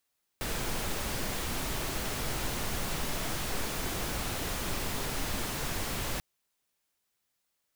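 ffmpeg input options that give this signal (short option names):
-f lavfi -i "anoisesrc=c=pink:a=0.115:d=5.79:r=44100:seed=1"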